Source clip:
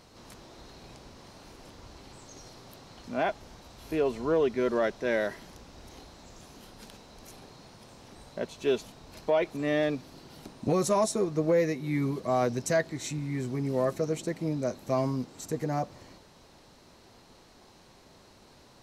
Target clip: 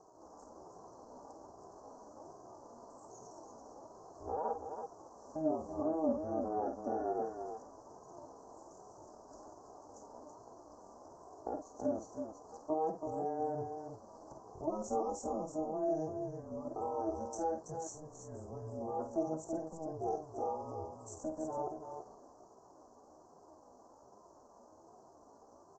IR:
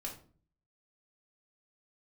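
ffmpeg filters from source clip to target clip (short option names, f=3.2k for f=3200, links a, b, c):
-filter_complex "[0:a]aecho=1:1:1.2:0.56,alimiter=level_in=0.5dB:limit=-24dB:level=0:latency=1:release=30,volume=-0.5dB,acompressor=threshold=-36dB:ratio=2,aeval=exprs='0.0531*(cos(1*acos(clip(val(0)/0.0531,-1,1)))-cos(1*PI/2))+0.00075*(cos(7*acos(clip(val(0)/0.0531,-1,1)))-cos(7*PI/2))':c=same,flanger=delay=3.4:depth=1.6:regen=19:speed=1.7:shape=sinusoidal,highpass=f=450:t=q:w=4.9,aeval=exprs='val(0)*sin(2*PI*160*n/s)':c=same,atempo=0.73,asplit=2[a][b];[b]aecho=0:1:51|329:0.422|0.447[c];[a][c]amix=inputs=2:normalize=0,aresample=16000,aresample=44100,asuperstop=centerf=2800:order=8:qfactor=0.56,volume=1dB"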